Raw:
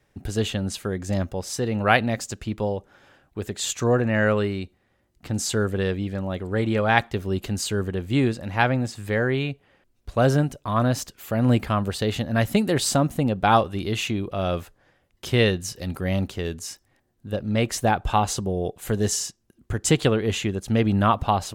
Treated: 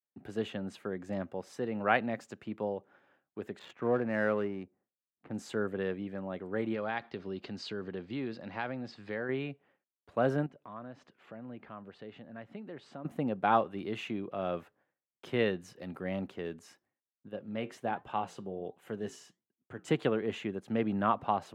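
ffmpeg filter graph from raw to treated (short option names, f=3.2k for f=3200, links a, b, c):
-filter_complex "[0:a]asettb=1/sr,asplit=3[a][b][c];[a]atrim=end=3.594[d];[b]atrim=start=3.59:end=5.33,asetpts=PTS-STARTPTS,afade=t=in:d=0.004:c=qsin,afade=t=out:st=1.736:d=0.004:c=qsin,highshelf=f=6.2k:g=-9,adynamicsmooth=sensitivity=4:basefreq=1.4k[e];[c]atrim=start=5.326[f];[d][e]acrossfade=d=0.004:c1=hsin:c2=qsin[g];[g][f]acrossfade=d=0.004:c1=qsin:c2=hsin,asettb=1/sr,asplit=3[h][i][j];[h]atrim=end=6.744[k];[i]atrim=start=6.74:end=9.29,asetpts=PTS-STARTPTS,afade=t=in:d=0.004:c=qsin,afade=t=out:st=2.546:d=0.004:c=qsin,acompressor=threshold=-24dB:ratio=3:attack=3.2:release=140:knee=1:detection=peak,lowpass=f=4.7k:t=q:w=3.8[l];[j]atrim=start=9.286[m];[k][l]acrossfade=d=0.004:c1=hsin:c2=qsin[n];[n][m]acrossfade=d=0.004:c1=qsin:c2=hsin,asettb=1/sr,asplit=3[o][p][q];[o]atrim=end=10.464[r];[p]atrim=start=10.46:end=13.05,asetpts=PTS-STARTPTS,afade=t=in:d=0.004:c=qsin,afade=t=out:st=2.586:d=0.004:c=qsin,lowpass=4.1k,acompressor=threshold=-43dB:ratio=2:attack=3.2:release=140:knee=1:detection=peak[s];[q]atrim=start=13.046[t];[r][s]acrossfade=d=0.004:c1=hsin:c2=qsin[u];[u][t]acrossfade=d=0.004:c1=qsin:c2=hsin,asettb=1/sr,asplit=3[v][w][x];[v]atrim=end=17.284[y];[w]atrim=start=17.28:end=19.88,asetpts=PTS-STARTPTS,afade=t=in:d=0.004:c=qsin,afade=t=out:st=2.596:d=0.004:c=qsin,equalizer=f=3k:w=6.2:g=4.5,flanger=delay=5.2:depth=4.6:regen=-78:speed=1.3:shape=sinusoidal[z];[x]atrim=start=19.876[aa];[y][z]acrossfade=d=0.004:c1=hsin:c2=qsin[ab];[ab][aa]acrossfade=d=0.004:c1=qsin:c2=hsin,agate=range=-33dB:threshold=-49dB:ratio=3:detection=peak,highpass=94,acrossover=split=150 2700:gain=0.141 1 0.141[ac][ad][ae];[ac][ad][ae]amix=inputs=3:normalize=0,volume=-8dB"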